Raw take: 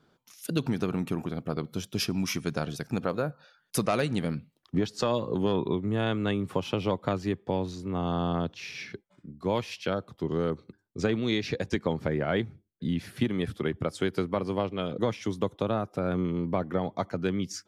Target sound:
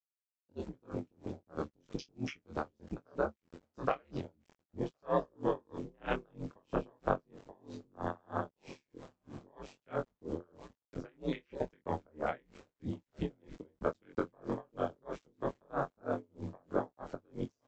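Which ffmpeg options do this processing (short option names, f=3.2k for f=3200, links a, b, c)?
-filter_complex "[0:a]afwtdn=0.0178,equalizer=f=230:t=o:w=1.1:g=2.5,asplit=2[a][b];[b]aecho=0:1:1066|2132|3198|4264:0.0708|0.0382|0.0206|0.0111[c];[a][c]amix=inputs=2:normalize=0,acontrast=73,flanger=delay=16:depth=7.3:speed=1.3,acrossover=split=470|3000[d][e][f];[d]acompressor=threshold=-36dB:ratio=3[g];[g][e][f]amix=inputs=3:normalize=0,aresample=16000,aeval=exprs='val(0)*gte(abs(val(0)),0.00335)':c=same,aresample=44100,aeval=exprs='val(0)*sin(2*PI*71*n/s)':c=same,asplit=2[h][i];[i]adelay=23,volume=-6.5dB[j];[h][j]amix=inputs=2:normalize=0,aeval=exprs='val(0)*pow(10,-37*(0.5-0.5*cos(2*PI*3.1*n/s))/20)':c=same"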